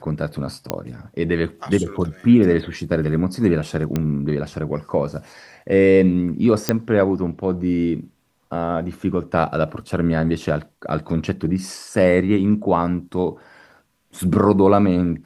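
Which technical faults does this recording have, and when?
0.70 s: pop -6 dBFS
3.96 s: pop -9 dBFS
6.69 s: pop -2 dBFS
9.81 s: dropout 2.1 ms

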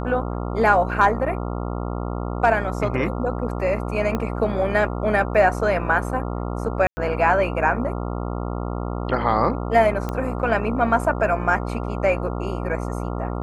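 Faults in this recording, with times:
buzz 60 Hz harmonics 23 -27 dBFS
4.15 s: pop -12 dBFS
6.87–6.97 s: dropout 100 ms
10.09 s: pop -14 dBFS

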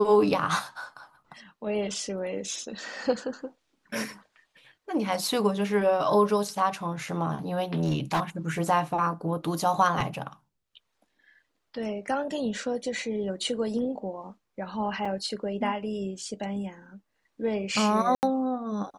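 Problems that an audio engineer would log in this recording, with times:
7.74–8.20 s: clipped -20.5 dBFS
15.05 s: dropout 4.3 ms
18.15–18.23 s: dropout 79 ms

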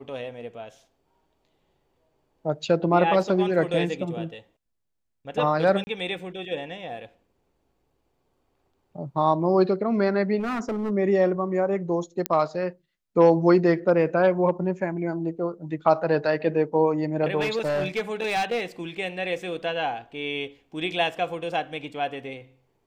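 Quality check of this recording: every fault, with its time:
5.84–5.87 s: dropout 30 ms
10.39–10.91 s: clipped -24 dBFS
12.26 s: pop -8 dBFS
17.40–18.63 s: clipped -21 dBFS

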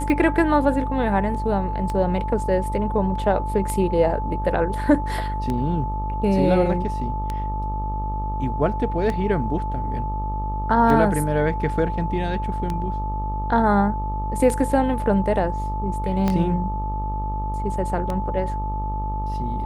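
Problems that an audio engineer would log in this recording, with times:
buzz 50 Hz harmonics 26 -27 dBFS
tick 33 1/3 rpm -14 dBFS
whine 870 Hz -28 dBFS
16.28 s: pop -10 dBFS

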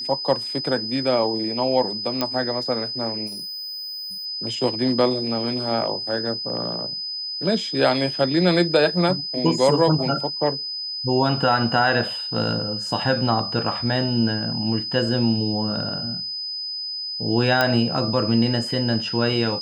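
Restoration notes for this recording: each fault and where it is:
whine 5 kHz -27 dBFS
2.21 s: pop -8 dBFS
3.26–4.26 s: clipped -31 dBFS
17.61 s: pop -5 dBFS

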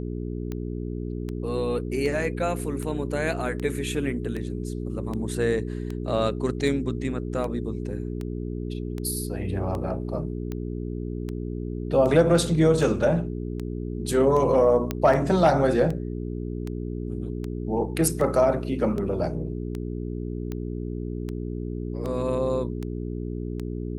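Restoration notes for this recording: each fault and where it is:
hum 60 Hz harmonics 7 -31 dBFS
tick 78 rpm -20 dBFS
14.91 s: pop -12 dBFS

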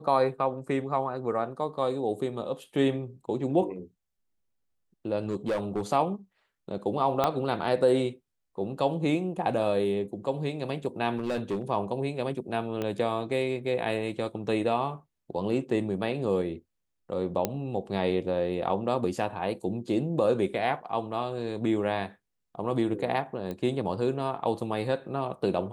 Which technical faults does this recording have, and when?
5.29–5.82 s: clipped -24 dBFS
7.24 s: pop -11 dBFS
11.16–11.70 s: clipped -25 dBFS
12.82 s: pop -18 dBFS
17.45 s: pop -11 dBFS
23.51 s: pop -23 dBFS

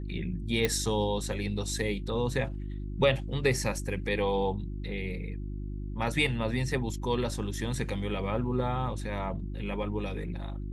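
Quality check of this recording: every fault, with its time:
hum 50 Hz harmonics 7 -36 dBFS
0.65 s: pop -12 dBFS

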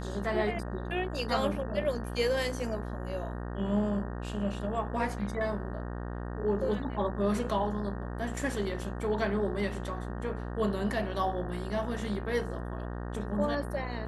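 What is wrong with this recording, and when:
buzz 60 Hz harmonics 31 -37 dBFS

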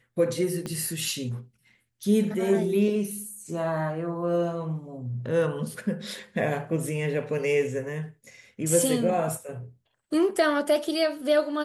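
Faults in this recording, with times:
0.66 s: pop -20 dBFS

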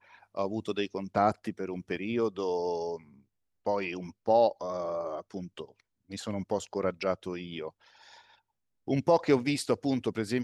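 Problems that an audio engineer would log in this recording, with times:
1.96–1.97 s: dropout 6.1 ms

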